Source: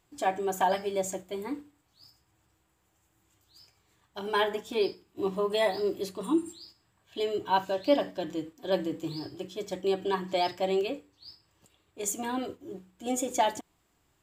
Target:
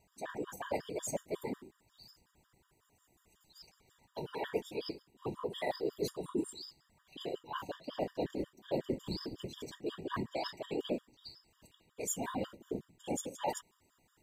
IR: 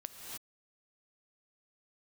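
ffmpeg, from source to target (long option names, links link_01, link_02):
-af "areverse,acompressor=threshold=-34dB:ratio=16,areverse,afftfilt=real='hypot(re,im)*cos(2*PI*random(0))':imag='hypot(re,im)*sin(2*PI*random(1))':win_size=512:overlap=0.75,afftfilt=real='re*gt(sin(2*PI*5.5*pts/sr)*(1-2*mod(floor(b*sr/1024/950),2)),0)':imag='im*gt(sin(2*PI*5.5*pts/sr)*(1-2*mod(floor(b*sr/1024/950),2)),0)':win_size=1024:overlap=0.75,volume=9dB"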